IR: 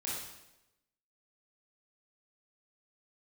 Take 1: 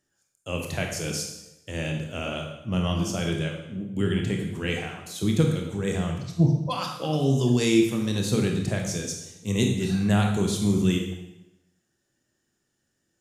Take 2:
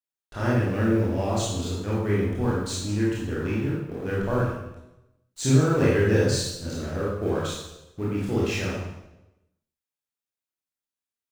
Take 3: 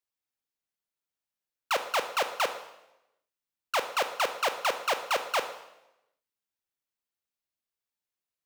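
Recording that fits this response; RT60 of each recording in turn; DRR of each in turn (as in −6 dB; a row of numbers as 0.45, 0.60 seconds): 2; 0.95, 0.95, 0.95 seconds; 1.5, −7.0, 8.0 decibels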